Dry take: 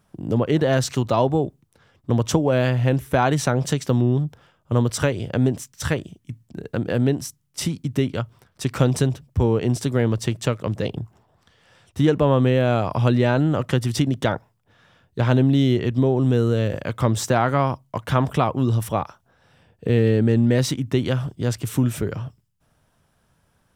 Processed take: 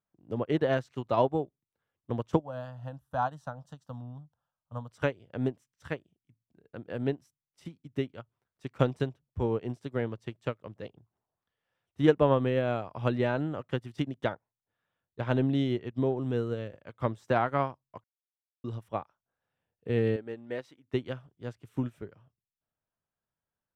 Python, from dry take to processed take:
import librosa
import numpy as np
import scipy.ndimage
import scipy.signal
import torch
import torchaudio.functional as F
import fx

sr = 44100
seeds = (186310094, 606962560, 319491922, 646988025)

y = fx.fixed_phaser(x, sr, hz=920.0, stages=4, at=(2.39, 4.92))
y = fx.bass_treble(y, sr, bass_db=-13, treble_db=-3, at=(20.16, 20.94))
y = fx.edit(y, sr, fx.silence(start_s=18.04, length_s=0.6), tone=tone)
y = fx.bass_treble(y, sr, bass_db=-5, treble_db=-10)
y = fx.upward_expand(y, sr, threshold_db=-32.0, expansion=2.5)
y = y * 10.0 ** (-1.0 / 20.0)